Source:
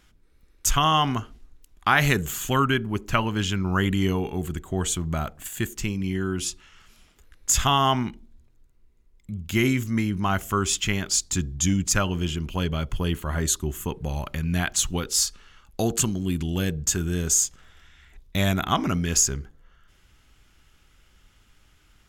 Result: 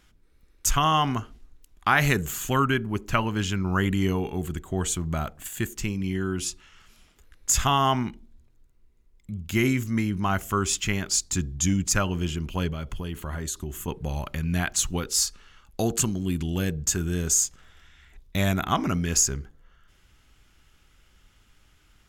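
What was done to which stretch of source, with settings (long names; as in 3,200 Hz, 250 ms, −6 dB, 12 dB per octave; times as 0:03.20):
0:12.68–0:13.88: downward compressor, threshold −26 dBFS
whole clip: dynamic equaliser 3,300 Hz, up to −4 dB, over −44 dBFS, Q 4.1; level −1 dB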